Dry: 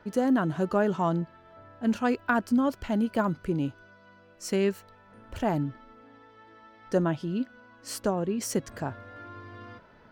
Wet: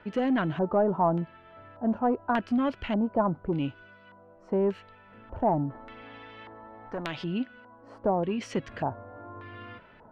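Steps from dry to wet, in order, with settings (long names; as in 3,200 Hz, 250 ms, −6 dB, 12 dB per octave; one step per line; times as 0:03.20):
soft clipping −19 dBFS, distortion −17 dB
auto-filter low-pass square 0.85 Hz 850–2,800 Hz
0:05.70–0:07.24: every bin compressed towards the loudest bin 2 to 1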